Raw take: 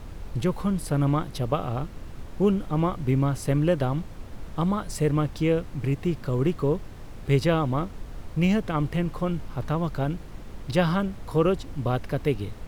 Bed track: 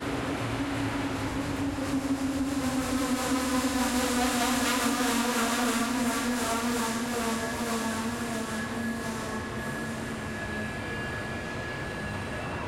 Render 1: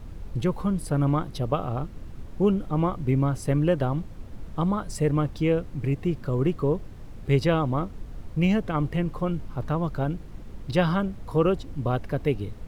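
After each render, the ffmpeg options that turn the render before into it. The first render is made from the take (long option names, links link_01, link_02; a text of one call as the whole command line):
ffmpeg -i in.wav -af "afftdn=noise_reduction=6:noise_floor=-41" out.wav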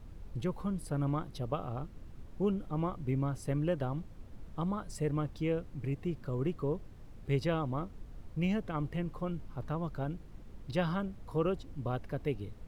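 ffmpeg -i in.wav -af "volume=-9.5dB" out.wav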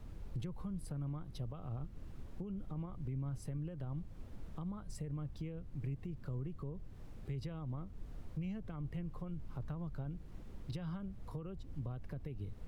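ffmpeg -i in.wav -filter_complex "[0:a]alimiter=level_in=6dB:limit=-24dB:level=0:latency=1:release=69,volume=-6dB,acrossover=split=180[link_01][link_02];[link_02]acompressor=threshold=-51dB:ratio=4[link_03];[link_01][link_03]amix=inputs=2:normalize=0" out.wav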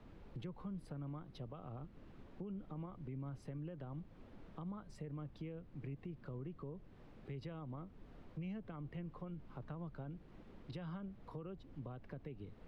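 ffmpeg -i in.wav -filter_complex "[0:a]acrossover=split=170 4300:gain=0.251 1 0.141[link_01][link_02][link_03];[link_01][link_02][link_03]amix=inputs=3:normalize=0" out.wav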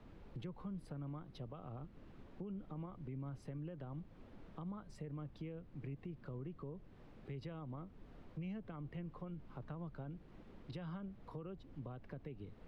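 ffmpeg -i in.wav -af anull out.wav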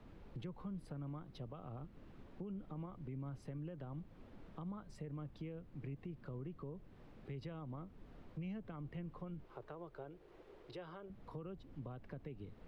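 ffmpeg -i in.wav -filter_complex "[0:a]asettb=1/sr,asplit=3[link_01][link_02][link_03];[link_01]atrim=end=9.444[link_04];[link_02]atrim=start=9.44:end=11.1,asetpts=PTS-STARTPTS,afade=type=in:duration=0.004:curve=qsin,afade=type=out:start_time=1.656:duration=0.004:curve=qsin,lowshelf=frequency=300:width_type=q:width=3:gain=-8.5[link_05];[link_03]atrim=start=11.096[link_06];[link_04][link_05]acrossfade=duration=0.004:curve1=hsin:curve2=qsin[link_07];[link_07][link_06]acrossfade=duration=0.004:curve1=qsin:curve2=hsin" out.wav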